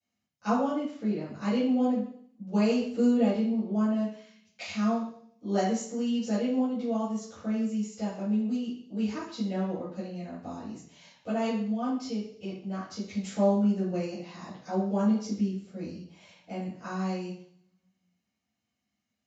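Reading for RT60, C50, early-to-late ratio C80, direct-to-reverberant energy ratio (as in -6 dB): 0.60 s, 3.0 dB, 7.5 dB, -12.5 dB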